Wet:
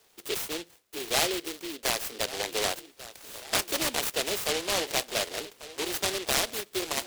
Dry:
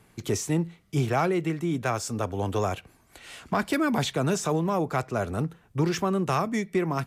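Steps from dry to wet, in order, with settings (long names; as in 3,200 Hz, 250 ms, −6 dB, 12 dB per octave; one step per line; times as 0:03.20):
high-pass filter 430 Hz 24 dB per octave
delay with a low-pass on its return 1,143 ms, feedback 57%, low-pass 2,200 Hz, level −16 dB
short delay modulated by noise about 3,100 Hz, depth 0.25 ms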